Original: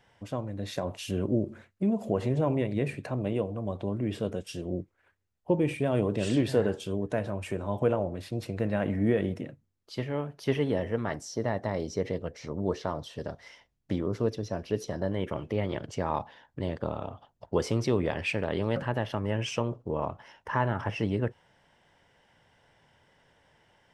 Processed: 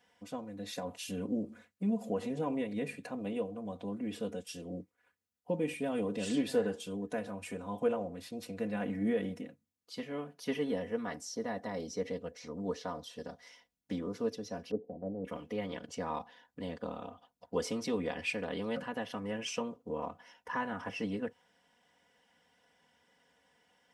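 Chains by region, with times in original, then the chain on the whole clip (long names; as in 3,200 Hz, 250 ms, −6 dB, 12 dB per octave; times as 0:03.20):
0:14.71–0:15.25: Butterworth low-pass 840 Hz 72 dB per octave + multiband upward and downward expander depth 100%
whole clip: high-pass filter 100 Hz; high-shelf EQ 4,100 Hz +7 dB; comb filter 4.1 ms, depth 89%; level −9 dB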